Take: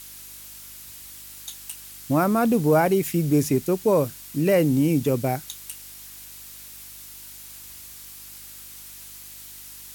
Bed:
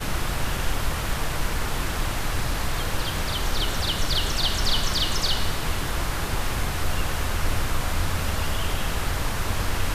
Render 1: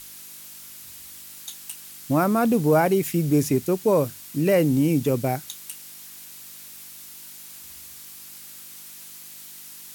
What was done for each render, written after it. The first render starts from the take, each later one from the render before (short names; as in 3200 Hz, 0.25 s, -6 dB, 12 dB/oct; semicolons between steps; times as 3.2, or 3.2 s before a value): de-hum 50 Hz, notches 2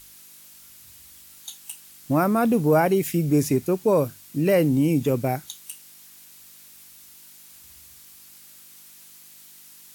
noise print and reduce 6 dB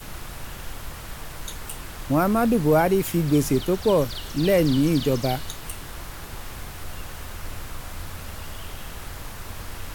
add bed -10.5 dB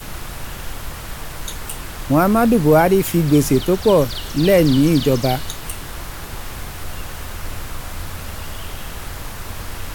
gain +6 dB